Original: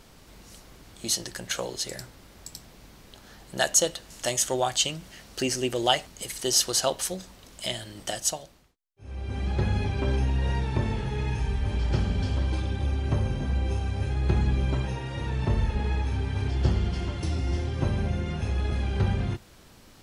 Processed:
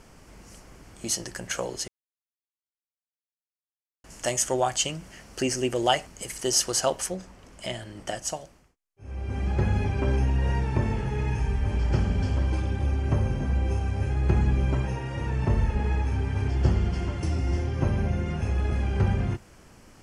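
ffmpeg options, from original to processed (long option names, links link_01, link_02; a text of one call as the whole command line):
ffmpeg -i in.wav -filter_complex "[0:a]asettb=1/sr,asplit=3[link_01][link_02][link_03];[link_01]atrim=end=7.064[link_04];[link_02]atrim=start=7.06:end=8.3,asetpts=PTS-STARTPTS,afade=type=in:duration=0.004:curve=qsin,afade=type=out:start_time=1.236:duration=0.004:curve=qsin,highshelf=frequency=5300:gain=-8.5[link_05];[link_03]atrim=start=8.296[link_06];[link_04][link_05]acrossfade=duration=0.004:curve1=hsin:curve2=qsin[link_07];[link_07][link_06]acrossfade=duration=0.004:curve1=qsin:curve2=hsin,asettb=1/sr,asplit=3[link_08][link_09][link_10];[link_08]atrim=end=17.634[link_11];[link_09]atrim=start=17.63:end=18.19,asetpts=PTS-STARTPTS,afade=type=in:duration=0.004:curve=qsin,afade=type=out:start_time=0.556:duration=0.004:curve=qsin,bandreject=frequency=8000:width=7.3[link_12];[link_10]atrim=start=18.186[link_13];[link_11][link_12]acrossfade=duration=0.004:curve1=hsin:curve2=qsin[link_14];[link_14][link_13]acrossfade=duration=0.004:curve1=qsin:curve2=hsin,asplit=3[link_15][link_16][link_17];[link_15]atrim=end=1.88,asetpts=PTS-STARTPTS,afade=type=out:start_time=1.876:duration=0.004:curve=hsin[link_18];[link_16]atrim=start=1.88:end=4.04,asetpts=PTS-STARTPTS,volume=0[link_19];[link_17]atrim=start=4.04,asetpts=PTS-STARTPTS,afade=type=in:duration=0.004:curve=hsin[link_20];[link_18][link_19][link_20]concat=n=3:v=0:a=1,lowpass=10000,equalizer=frequency=3800:width=3.2:gain=-13,volume=1.5dB" out.wav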